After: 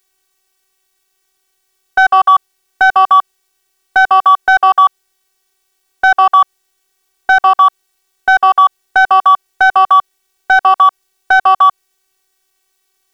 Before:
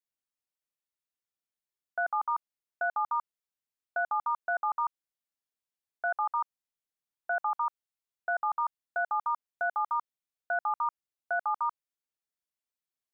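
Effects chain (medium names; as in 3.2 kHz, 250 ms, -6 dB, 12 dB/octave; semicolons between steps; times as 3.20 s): robot voice 379 Hz; waveshaping leveller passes 1; loudness maximiser +33.5 dB; trim -1 dB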